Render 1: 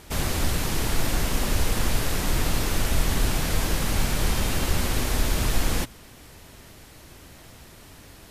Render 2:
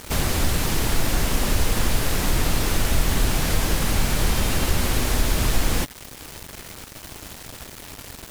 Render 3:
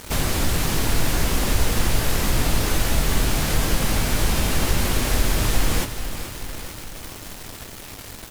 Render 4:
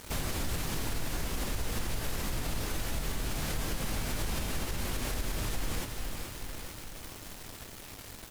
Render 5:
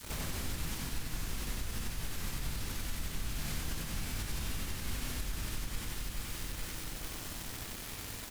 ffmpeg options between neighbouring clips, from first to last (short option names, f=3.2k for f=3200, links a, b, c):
-filter_complex "[0:a]asplit=2[a][b];[b]acompressor=threshold=-31dB:ratio=5,volume=2dB[c];[a][c]amix=inputs=2:normalize=0,acrusher=bits=5:mix=0:aa=0.000001"
-filter_complex "[0:a]asplit=2[a][b];[b]adelay=19,volume=-11dB[c];[a][c]amix=inputs=2:normalize=0,asplit=2[d][e];[e]aecho=0:1:432|864|1296|1728|2160|2592|3024:0.282|0.166|0.0981|0.0579|0.0342|0.0201|0.0119[f];[d][f]amix=inputs=2:normalize=0"
-af "alimiter=limit=-15dB:level=0:latency=1:release=109,volume=-8.5dB"
-af "adynamicequalizer=threshold=0.00178:dfrequency=560:dqfactor=0.8:tfrequency=560:tqfactor=0.8:attack=5:release=100:ratio=0.375:range=4:mode=cutabove:tftype=bell,acompressor=threshold=-37dB:ratio=6,aecho=1:1:61.22|93.29:0.355|0.891,volume=1dB"